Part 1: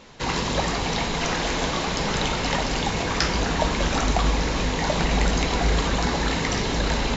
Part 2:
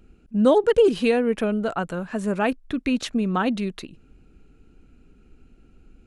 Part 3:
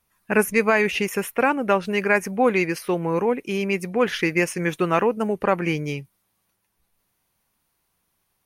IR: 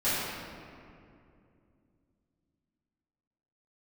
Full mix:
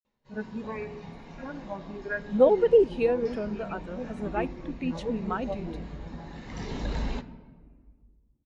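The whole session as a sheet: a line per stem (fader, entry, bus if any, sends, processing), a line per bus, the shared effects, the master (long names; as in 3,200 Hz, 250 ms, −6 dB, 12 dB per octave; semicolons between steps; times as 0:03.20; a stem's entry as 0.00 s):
−4.0 dB, 0.05 s, send −19.5 dB, automatic ducking −21 dB, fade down 0.30 s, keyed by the third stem
−2.0 dB, 1.95 s, no send, low-shelf EQ 250 Hz −11 dB
−8.5 dB, 0.00 s, send −20.5 dB, harmonic-percussive split with one part muted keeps harmonic; barber-pole flanger 5.2 ms +1.5 Hz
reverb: on, RT60 2.5 s, pre-delay 5 ms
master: every bin expanded away from the loudest bin 1.5 to 1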